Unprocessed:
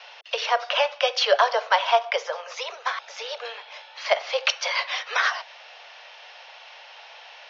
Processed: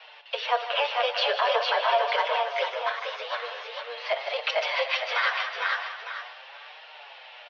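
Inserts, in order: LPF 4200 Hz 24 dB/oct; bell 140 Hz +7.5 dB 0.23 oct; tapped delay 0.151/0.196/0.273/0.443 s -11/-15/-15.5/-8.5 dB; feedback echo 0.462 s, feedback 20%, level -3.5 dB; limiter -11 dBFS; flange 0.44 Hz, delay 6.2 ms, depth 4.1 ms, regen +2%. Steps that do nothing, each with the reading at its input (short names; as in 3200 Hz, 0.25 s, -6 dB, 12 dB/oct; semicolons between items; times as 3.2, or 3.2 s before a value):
bell 140 Hz: input band starts at 380 Hz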